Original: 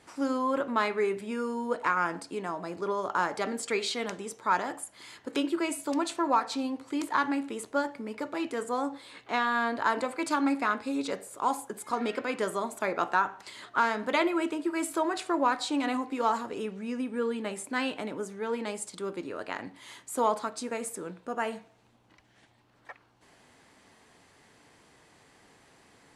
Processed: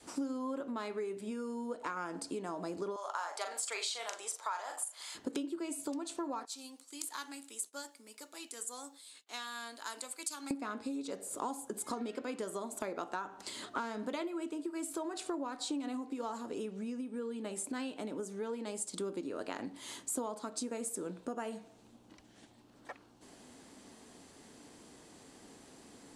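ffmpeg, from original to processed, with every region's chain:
ffmpeg -i in.wav -filter_complex "[0:a]asettb=1/sr,asplit=3[link_01][link_02][link_03];[link_01]atrim=end=2.964[link_04];[link_02]atrim=start=2.96:end=5.15,asetpts=PTS-STARTPTS,afade=type=in:duration=0.004:curve=qsin,afade=type=out:start_time=2.186:duration=0.004:curve=qsin,highpass=frequency=670:width=0.5412,highpass=frequency=670:width=1.3066,asplit=2[link_05][link_06];[link_06]adelay=40,volume=-7dB[link_07];[link_05][link_07]amix=inputs=2:normalize=0,atrim=end_sample=96579[link_08];[link_03]atrim=start=5.146[link_09];[link_04][link_08]acrossfade=duration=0.004:curve1=hsin:curve2=qsin[link_10];[link_10][link_09]acrossfade=duration=0.004:curve1=qsin:curve2=hsin,asettb=1/sr,asplit=3[link_11][link_12][link_13];[link_11]atrim=end=6.454[link_14];[link_12]atrim=start=6.45:end=10.51,asetpts=PTS-STARTPTS,afade=type=in:duration=0.004:curve=qsin,afade=type=out:start_time=4.056:duration=0.004:curve=qsin,agate=range=-33dB:threshold=-48dB:ratio=3:release=100:detection=peak,aderivative[link_15];[link_13]atrim=start=10.506[link_16];[link_14][link_15]acrossfade=duration=0.004:curve1=hsin:curve2=qsin[link_17];[link_17][link_16]acrossfade=duration=0.004:curve1=qsin:curve2=hsin,equalizer=frequency=125:width_type=o:width=1:gain=-5,equalizer=frequency=250:width_type=o:width=1:gain=7,equalizer=frequency=1000:width_type=o:width=1:gain=-3,equalizer=frequency=2000:width_type=o:width=1:gain=-7,equalizer=frequency=8000:width_type=o:width=1:gain=4,acompressor=threshold=-37dB:ratio=12,adynamicequalizer=threshold=0.00251:dfrequency=230:dqfactor=1.1:tfrequency=230:tqfactor=1.1:attack=5:release=100:ratio=0.375:range=2:mode=cutabove:tftype=bell,volume=3dB" out.wav

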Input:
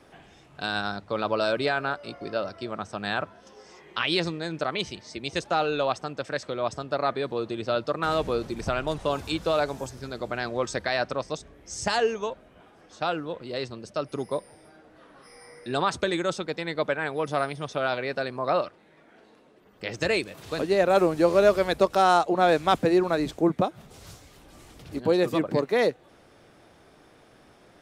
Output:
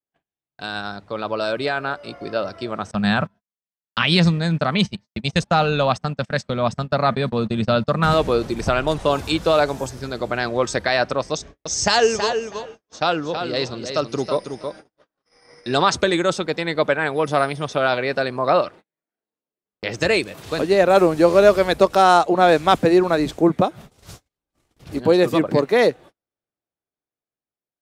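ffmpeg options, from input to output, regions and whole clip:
ffmpeg -i in.wav -filter_complex "[0:a]asettb=1/sr,asplit=3[link_01][link_02][link_03];[link_01]atrim=end=2.914[link_04];[link_02]atrim=start=2.91:end=8.14,asetpts=PTS-STARTPTS,afade=type=in:duration=0.004:curve=qsin,afade=type=out:start_time=5.226:duration=0.004:curve=qsin,agate=range=-25dB:threshold=-37dB:ratio=16:release=100:detection=peak,lowshelf=frequency=260:width_type=q:width=3:gain=6.5[link_05];[link_03]atrim=start=8.136[link_06];[link_04][link_05]acrossfade=duration=0.004:curve1=hsin:curve2=qsin[link_07];[link_07][link_06]acrossfade=duration=0.004:curve1=qsin:curve2=hsin,asettb=1/sr,asplit=3[link_08][link_09][link_10];[link_08]atrim=end=11.334[link_11];[link_09]atrim=start=11.33:end=15.95,asetpts=PTS-STARTPTS,afade=type=in:duration=0.004:curve=qsin,afade=type=out:start_time=4.616:duration=0.004:curve=qsin,lowpass=frequency=6100:width_type=q:width=2.2,aecho=1:1:323|646:0.422|0.0633,atrim=end_sample=203742[link_12];[link_10]atrim=start=15.946[link_13];[link_11][link_12]acrossfade=duration=0.004:curve1=hsin:curve2=qsin[link_14];[link_14][link_13]acrossfade=duration=0.004:curve1=qsin:curve2=hsin,agate=range=-44dB:threshold=-45dB:ratio=16:detection=peak,dynaudnorm=framelen=630:gausssize=7:maxgain=8.5dB" out.wav

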